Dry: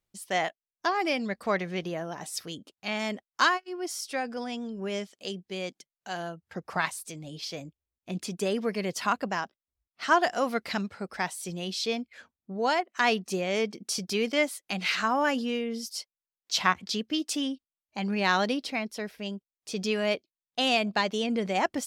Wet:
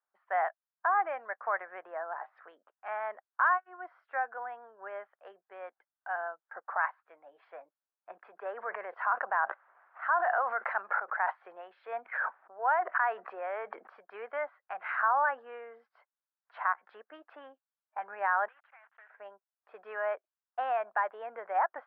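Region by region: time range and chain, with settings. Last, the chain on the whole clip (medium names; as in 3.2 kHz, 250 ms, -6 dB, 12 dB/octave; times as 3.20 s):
8.18–13.92 s: Bessel high-pass 220 Hz, order 8 + decay stretcher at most 20 dB/s
18.48–19.10 s: block-companded coder 3-bit + band-pass filter 2.9 kHz, Q 2 + compression 2.5:1, threshold -47 dBFS
whole clip: elliptic low-pass 1.6 kHz, stop band 80 dB; peak limiter -20.5 dBFS; high-pass 760 Hz 24 dB/octave; trim +4.5 dB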